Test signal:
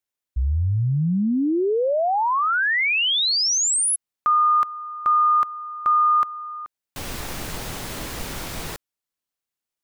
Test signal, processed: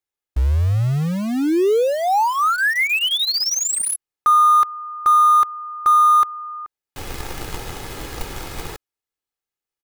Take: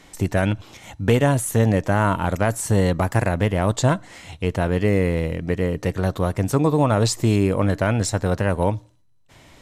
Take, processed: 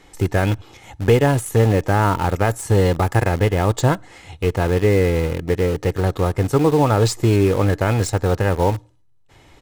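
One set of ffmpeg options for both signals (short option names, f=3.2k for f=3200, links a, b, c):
-filter_complex "[0:a]highshelf=f=2.9k:g=-5,aecho=1:1:2.4:0.42,asplit=2[a][b];[b]acrusher=bits=3:mix=0:aa=0.000001,volume=-9.5dB[c];[a][c]amix=inputs=2:normalize=0"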